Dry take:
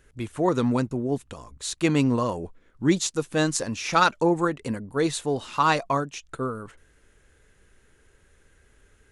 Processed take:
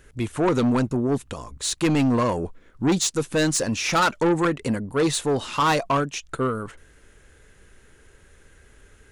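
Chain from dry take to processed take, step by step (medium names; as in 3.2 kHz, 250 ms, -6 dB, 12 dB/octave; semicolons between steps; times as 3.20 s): saturation -22 dBFS, distortion -9 dB; trim +6.5 dB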